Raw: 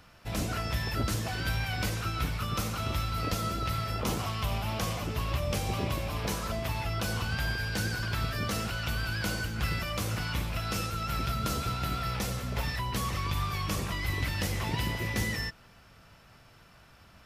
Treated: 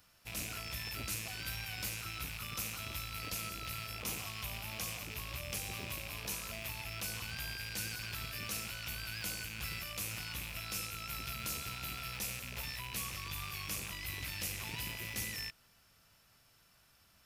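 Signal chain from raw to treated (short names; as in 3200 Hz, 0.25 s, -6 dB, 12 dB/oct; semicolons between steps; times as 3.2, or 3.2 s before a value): rattling part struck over -38 dBFS, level -23 dBFS; pre-emphasis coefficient 0.8; gain -1 dB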